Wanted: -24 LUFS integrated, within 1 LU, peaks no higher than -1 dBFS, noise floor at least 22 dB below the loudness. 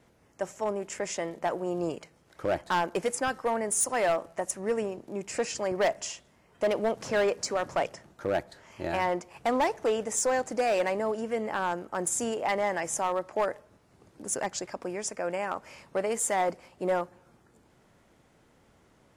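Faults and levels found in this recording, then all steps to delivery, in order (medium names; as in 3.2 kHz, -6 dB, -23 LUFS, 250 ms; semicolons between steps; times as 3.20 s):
clipped samples 1.0%; clipping level -20.5 dBFS; loudness -30.0 LUFS; peak level -20.5 dBFS; loudness target -24.0 LUFS
-> clip repair -20.5 dBFS; trim +6 dB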